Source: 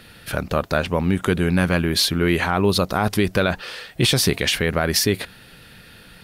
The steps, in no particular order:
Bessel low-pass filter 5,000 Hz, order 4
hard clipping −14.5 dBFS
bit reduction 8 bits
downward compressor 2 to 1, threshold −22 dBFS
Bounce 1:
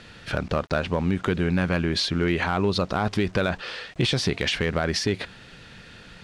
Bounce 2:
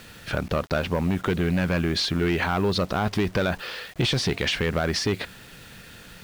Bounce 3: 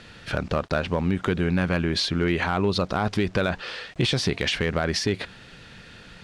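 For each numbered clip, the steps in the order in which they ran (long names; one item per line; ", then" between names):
downward compressor, then bit reduction, then Bessel low-pass filter, then hard clipping
hard clipping, then downward compressor, then Bessel low-pass filter, then bit reduction
bit reduction, then downward compressor, then Bessel low-pass filter, then hard clipping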